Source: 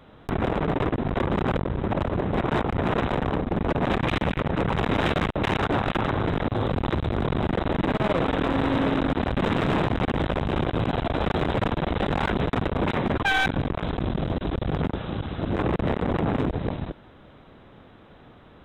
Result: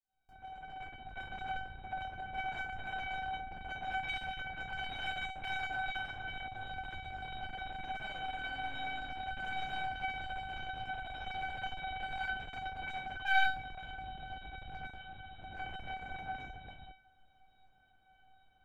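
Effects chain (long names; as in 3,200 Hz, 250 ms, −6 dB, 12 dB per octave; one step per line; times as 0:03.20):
fade in at the beginning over 1.41 s
dynamic equaliser 2,200 Hz, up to +7 dB, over −43 dBFS, Q 0.83
tuned comb filter 760 Hz, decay 0.35 s, mix 100%
level +4.5 dB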